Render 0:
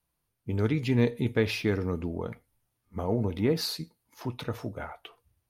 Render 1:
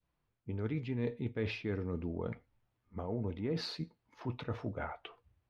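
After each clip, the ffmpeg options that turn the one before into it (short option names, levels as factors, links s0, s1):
-af "lowpass=2900,adynamicequalizer=threshold=0.00794:dfrequency=1100:dqfactor=0.82:tfrequency=1100:tqfactor=0.82:attack=5:release=100:ratio=0.375:range=2:mode=cutabove:tftype=bell,areverse,acompressor=threshold=0.02:ratio=4,areverse"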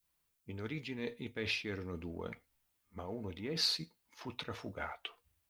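-filter_complex "[0:a]equalizer=f=120:t=o:w=0.2:g=-10.5,crystalizer=i=8.5:c=0,asplit=2[s0][s1];[s1]aeval=exprs='sgn(val(0))*max(abs(val(0))-0.00422,0)':c=same,volume=0.266[s2];[s0][s2]amix=inputs=2:normalize=0,volume=0.447"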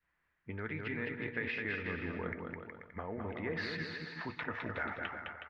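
-af "lowpass=f=1800:t=q:w=4.4,acompressor=threshold=0.0112:ratio=3,aecho=1:1:210|367.5|485.6|574.2|640.7:0.631|0.398|0.251|0.158|0.1,volume=1.33"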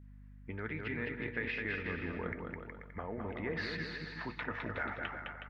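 -af "aeval=exprs='val(0)+0.00251*(sin(2*PI*50*n/s)+sin(2*PI*2*50*n/s)/2+sin(2*PI*3*50*n/s)/3+sin(2*PI*4*50*n/s)/4+sin(2*PI*5*50*n/s)/5)':c=same"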